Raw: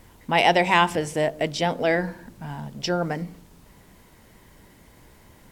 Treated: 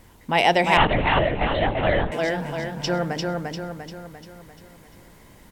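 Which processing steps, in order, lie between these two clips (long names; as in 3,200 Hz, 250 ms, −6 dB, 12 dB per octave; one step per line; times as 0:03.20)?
on a send: repeating echo 347 ms, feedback 49%, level −3 dB
0:00.77–0:02.12: on the sum: linear-prediction vocoder at 8 kHz whisper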